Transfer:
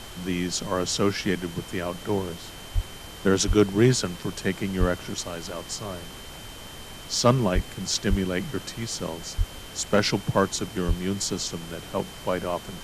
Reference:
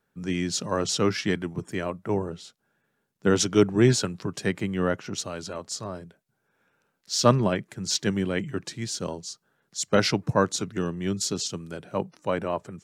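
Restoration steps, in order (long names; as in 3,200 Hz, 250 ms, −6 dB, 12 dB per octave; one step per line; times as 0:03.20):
clipped peaks rebuilt −9 dBFS
notch filter 3,100 Hz, Q 30
high-pass at the plosives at 0:02.74/0:03.47/0:04.79/0:07.54/0:08.09/0:09.37/0:10.87
noise reduction from a noise print 30 dB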